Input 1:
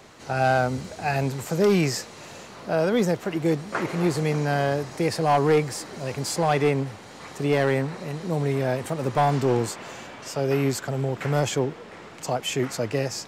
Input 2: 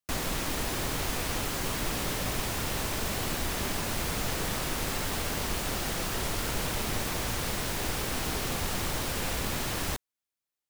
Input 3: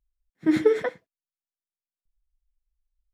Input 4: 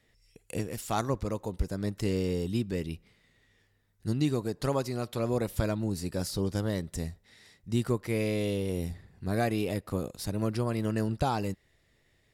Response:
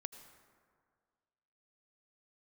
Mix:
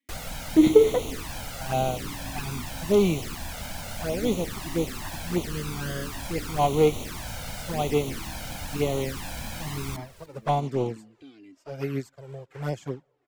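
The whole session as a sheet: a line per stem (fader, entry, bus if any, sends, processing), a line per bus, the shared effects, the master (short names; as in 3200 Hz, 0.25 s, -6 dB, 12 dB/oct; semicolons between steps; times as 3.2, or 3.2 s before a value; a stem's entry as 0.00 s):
+1.5 dB, 1.30 s, send -22.5 dB, no echo send, upward expander 2.5:1, over -40 dBFS
-3.5 dB, 0.00 s, send -10 dB, echo send -16 dB, dry
+3.0 dB, 0.10 s, send -9 dB, no echo send, dry
0.0 dB, 0.00 s, no send, no echo send, vowel filter i; low shelf 150 Hz -8.5 dB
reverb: on, RT60 1.9 s, pre-delay 73 ms
echo: feedback echo 0.295 s, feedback 24%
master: envelope flanger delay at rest 3.6 ms, full sweep at -21 dBFS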